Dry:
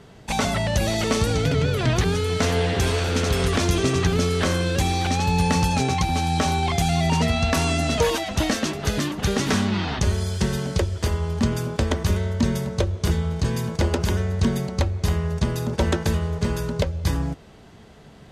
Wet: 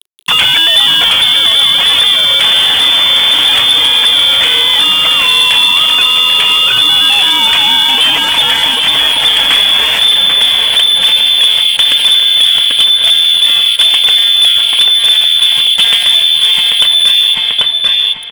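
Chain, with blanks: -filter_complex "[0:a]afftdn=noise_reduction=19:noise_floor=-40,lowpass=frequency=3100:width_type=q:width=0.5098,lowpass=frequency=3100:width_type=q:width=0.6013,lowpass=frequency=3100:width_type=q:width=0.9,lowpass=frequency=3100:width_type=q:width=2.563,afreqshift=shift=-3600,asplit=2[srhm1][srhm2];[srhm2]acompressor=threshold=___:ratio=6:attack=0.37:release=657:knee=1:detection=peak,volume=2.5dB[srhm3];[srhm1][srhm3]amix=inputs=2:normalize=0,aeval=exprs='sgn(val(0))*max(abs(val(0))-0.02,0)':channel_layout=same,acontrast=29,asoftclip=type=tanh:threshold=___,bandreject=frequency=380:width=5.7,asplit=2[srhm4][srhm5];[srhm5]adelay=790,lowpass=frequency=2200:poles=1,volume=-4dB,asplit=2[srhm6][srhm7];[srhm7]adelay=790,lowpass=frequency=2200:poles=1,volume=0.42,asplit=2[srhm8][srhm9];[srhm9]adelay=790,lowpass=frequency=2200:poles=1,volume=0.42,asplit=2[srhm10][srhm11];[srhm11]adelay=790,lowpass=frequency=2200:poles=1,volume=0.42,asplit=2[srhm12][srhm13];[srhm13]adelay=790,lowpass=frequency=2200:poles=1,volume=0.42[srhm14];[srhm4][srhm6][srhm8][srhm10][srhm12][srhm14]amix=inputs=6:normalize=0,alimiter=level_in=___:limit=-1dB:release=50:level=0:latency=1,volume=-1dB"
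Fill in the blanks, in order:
-32dB, -13dB, 20dB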